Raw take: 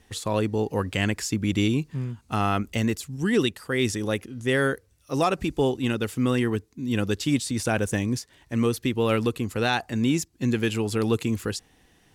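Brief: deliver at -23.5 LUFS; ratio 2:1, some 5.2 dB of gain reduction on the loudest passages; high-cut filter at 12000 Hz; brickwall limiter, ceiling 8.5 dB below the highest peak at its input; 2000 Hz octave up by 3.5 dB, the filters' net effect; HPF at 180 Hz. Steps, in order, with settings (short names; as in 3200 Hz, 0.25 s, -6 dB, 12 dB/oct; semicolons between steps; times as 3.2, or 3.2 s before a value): HPF 180 Hz; LPF 12000 Hz; bell 2000 Hz +4.5 dB; compressor 2:1, threshold -27 dBFS; gain +9 dB; limiter -11.5 dBFS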